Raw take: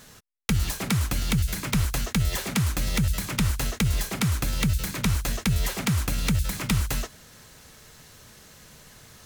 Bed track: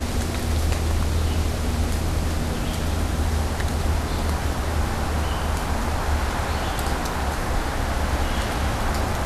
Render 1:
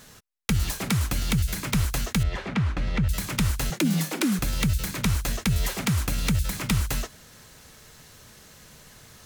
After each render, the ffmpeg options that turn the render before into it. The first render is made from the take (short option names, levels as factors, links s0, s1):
-filter_complex "[0:a]asettb=1/sr,asplit=3[s0][s1][s2];[s0]atrim=end=2.234[s3];[s1]atrim=start=2.23:end=3.09,asetpts=PTS-STARTPTS,afade=t=in:d=0.004:c=qsin,afade=t=out:st=0.856:d=0.004:c=qsin,lowpass=2500[s4];[s2]atrim=start=3.086[s5];[s3][s4]acrossfade=d=0.004:c1=hsin:c2=qsin[s6];[s6][s5]acrossfade=d=0.004:c1=qsin:c2=hsin,asettb=1/sr,asplit=3[s7][s8][s9];[s7]atrim=end=3.704[s10];[s8]atrim=start=3.7:end=4.39,asetpts=PTS-STARTPTS,afade=t=in:d=0.004:c=qsin,afade=t=out:st=0.686:d=0.004:c=qsin,afreqshift=120[s11];[s9]atrim=start=4.386[s12];[s10][s11]acrossfade=d=0.004:c1=hsin:c2=qsin[s13];[s13][s12]acrossfade=d=0.004:c1=qsin:c2=hsin"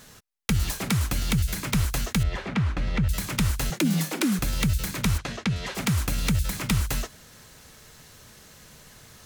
-filter_complex "[0:a]asplit=3[s0][s1][s2];[s0]afade=t=out:st=5.17:d=0.02[s3];[s1]highpass=110,lowpass=4400,afade=t=in:st=5.17:d=0.02,afade=t=out:st=5.74:d=0.02[s4];[s2]afade=t=in:st=5.74:d=0.02[s5];[s3][s4][s5]amix=inputs=3:normalize=0"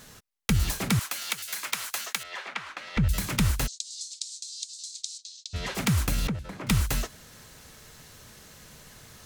-filter_complex "[0:a]asettb=1/sr,asplit=3[s0][s1][s2];[s0]atrim=end=0.994[s3];[s1]atrim=start=0.99:end=2.97,asetpts=PTS-STARTPTS,afade=t=in:d=0.004:c=qsin,afade=t=out:st=1.976:d=0.004:c=qsin,highpass=880[s4];[s2]atrim=start=2.966[s5];[s3][s4]acrossfade=d=0.004:c1=hsin:c2=qsin[s6];[s6][s5]acrossfade=d=0.004:c1=qsin:c2=hsin,asplit=3[s7][s8][s9];[s7]afade=t=out:st=3.66:d=0.02[s10];[s8]asuperpass=centerf=5800:order=8:qfactor=1.3,afade=t=in:st=3.66:d=0.02,afade=t=out:st=5.53:d=0.02[s11];[s9]afade=t=in:st=5.53:d=0.02[s12];[s10][s11][s12]amix=inputs=3:normalize=0,asettb=1/sr,asplit=3[s13][s14][s15];[s13]atrim=end=6.274[s16];[s14]atrim=start=6.27:end=6.67,asetpts=PTS-STARTPTS,afade=t=in:d=0.004:c=qsin,afade=t=out:st=0.396:d=0.004:c=qsin,bandpass=f=500:t=q:w=0.67[s17];[s15]atrim=start=6.666[s18];[s16][s17]acrossfade=d=0.004:c1=hsin:c2=qsin[s19];[s19][s18]acrossfade=d=0.004:c1=qsin:c2=hsin"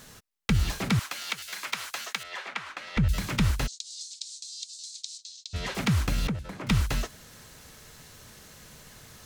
-filter_complex "[0:a]acrossover=split=5800[s0][s1];[s1]acompressor=threshold=0.00708:ratio=4:attack=1:release=60[s2];[s0][s2]amix=inputs=2:normalize=0"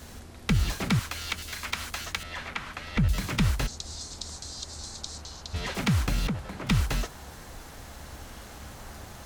-filter_complex "[1:a]volume=0.0891[s0];[0:a][s0]amix=inputs=2:normalize=0"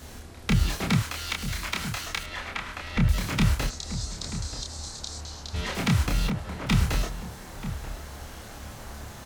-filter_complex "[0:a]asplit=2[s0][s1];[s1]adelay=28,volume=0.708[s2];[s0][s2]amix=inputs=2:normalize=0,asplit=2[s3][s4];[s4]adelay=932.9,volume=0.282,highshelf=f=4000:g=-21[s5];[s3][s5]amix=inputs=2:normalize=0"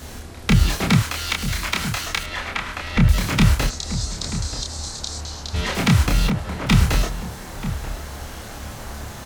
-af "volume=2.24"